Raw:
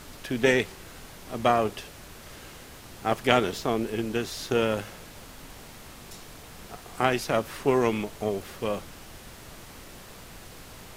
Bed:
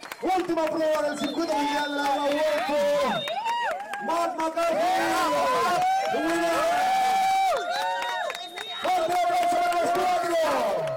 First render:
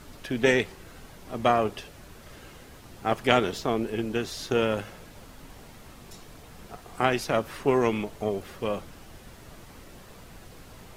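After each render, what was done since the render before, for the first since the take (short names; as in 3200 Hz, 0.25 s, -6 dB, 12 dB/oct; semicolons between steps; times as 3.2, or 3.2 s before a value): denoiser 6 dB, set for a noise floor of -47 dBFS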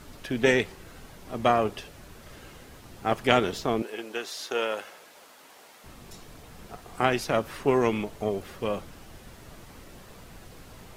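3.82–5.84 HPF 520 Hz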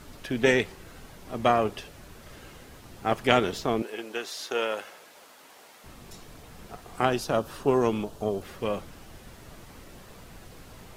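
7.05–8.42 bell 2100 Hz -12 dB 0.48 oct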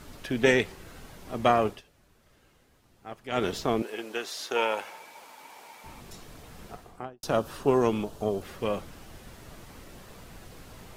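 1.68–3.45 dip -15.5 dB, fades 0.14 s; 4.56–6.01 small resonant body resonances 900/2300 Hz, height 13 dB, ringing for 30 ms; 6.64–7.23 studio fade out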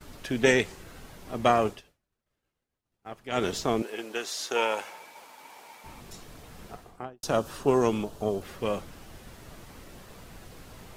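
expander -48 dBFS; dynamic EQ 7100 Hz, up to +6 dB, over -52 dBFS, Q 1.3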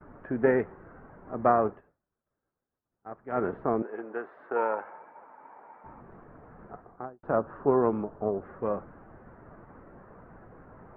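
steep low-pass 1600 Hz 36 dB/oct; low shelf 89 Hz -10 dB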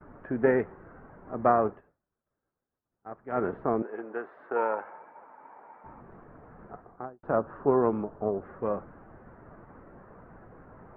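nothing audible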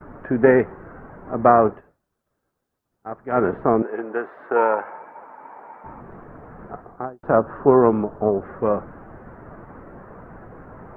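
gain +9.5 dB; limiter -2 dBFS, peak gain reduction 1.5 dB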